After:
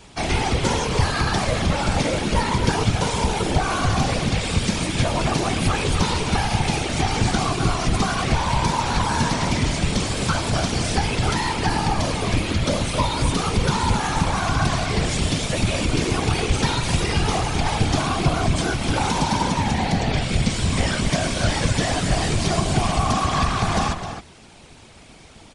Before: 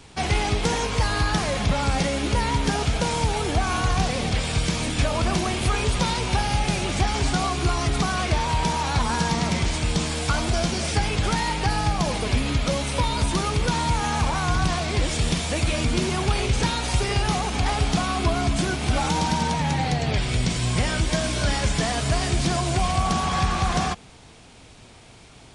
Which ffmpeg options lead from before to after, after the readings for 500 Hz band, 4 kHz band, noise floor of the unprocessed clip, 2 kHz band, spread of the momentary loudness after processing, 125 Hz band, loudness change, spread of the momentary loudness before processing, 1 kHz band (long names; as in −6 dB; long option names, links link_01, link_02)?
+2.5 dB, +2.0 dB, −47 dBFS, +2.0 dB, 2 LU, +2.0 dB, +2.0 dB, 1 LU, +2.0 dB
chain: -filter_complex "[0:a]asplit=2[link_01][link_02];[link_02]adelay=262.4,volume=-8dB,highshelf=frequency=4000:gain=-5.9[link_03];[link_01][link_03]amix=inputs=2:normalize=0,afftfilt=real='hypot(re,im)*cos(2*PI*random(0))':imag='hypot(re,im)*sin(2*PI*random(1))':win_size=512:overlap=0.75,volume=7.5dB"